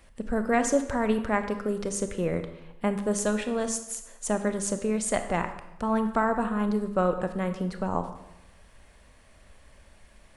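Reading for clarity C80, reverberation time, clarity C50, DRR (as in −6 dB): 12.0 dB, 0.90 s, 10.0 dB, 8.0 dB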